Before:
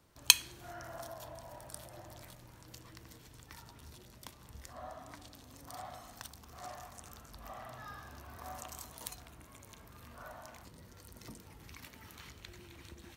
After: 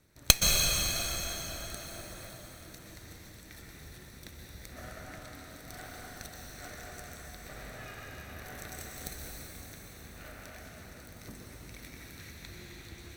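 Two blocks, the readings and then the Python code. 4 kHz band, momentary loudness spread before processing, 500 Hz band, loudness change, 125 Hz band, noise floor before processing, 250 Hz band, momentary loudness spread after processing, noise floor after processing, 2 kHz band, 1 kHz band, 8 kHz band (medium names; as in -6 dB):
+3.5 dB, 9 LU, +5.5 dB, +4.5 dB, +9.5 dB, -57 dBFS, +8.5 dB, 21 LU, -51 dBFS, +4.5 dB, +1.5 dB, +5.5 dB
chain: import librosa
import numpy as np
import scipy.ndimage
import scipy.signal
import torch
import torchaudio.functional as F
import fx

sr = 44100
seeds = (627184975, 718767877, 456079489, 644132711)

y = fx.lower_of_two(x, sr, delay_ms=0.51)
y = fx.rev_plate(y, sr, seeds[0], rt60_s=4.1, hf_ratio=0.9, predelay_ms=110, drr_db=-2.0)
y = F.gain(torch.from_numpy(y), 2.0).numpy()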